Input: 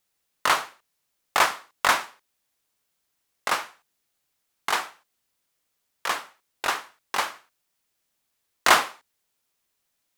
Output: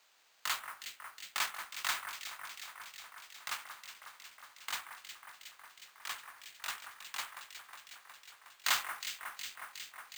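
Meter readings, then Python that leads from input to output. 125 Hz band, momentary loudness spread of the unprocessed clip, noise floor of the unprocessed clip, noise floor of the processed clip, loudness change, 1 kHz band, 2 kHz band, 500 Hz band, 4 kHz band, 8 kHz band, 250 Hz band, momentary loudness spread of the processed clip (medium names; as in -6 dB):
no reading, 16 LU, -77 dBFS, -64 dBFS, -14.5 dB, -17.5 dB, -13.0 dB, -24.5 dB, -9.0 dB, -8.0 dB, -25.0 dB, 16 LU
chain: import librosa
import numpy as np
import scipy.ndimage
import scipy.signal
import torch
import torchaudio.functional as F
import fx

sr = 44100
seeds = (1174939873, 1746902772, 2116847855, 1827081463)

p1 = fx.wiener(x, sr, points=9)
p2 = np.diff(p1, prepend=0.0)
p3 = fx.quant_dither(p2, sr, seeds[0], bits=8, dither='triangular')
p4 = p2 + (p3 * librosa.db_to_amplitude(-10.0))
p5 = scipy.signal.sosfilt(scipy.signal.butter(2, 660.0, 'highpass', fs=sr, output='sos'), p4)
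p6 = p5 + fx.echo_alternate(p5, sr, ms=182, hz=2000.0, feedback_pct=85, wet_db=-7.5, dry=0)
p7 = np.repeat(scipy.signal.resample_poly(p6, 1, 4), 4)[:len(p6)]
p8 = fx.mod_noise(p7, sr, seeds[1], snr_db=13)
y = p8 * librosa.db_to_amplitude(-4.0)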